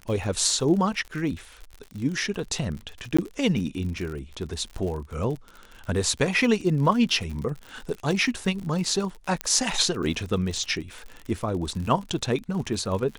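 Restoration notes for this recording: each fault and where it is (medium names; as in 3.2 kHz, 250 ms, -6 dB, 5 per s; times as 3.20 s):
crackle 57 per s -32 dBFS
3.17–3.19 s: dropout 15 ms
9.41 s: pop -12 dBFS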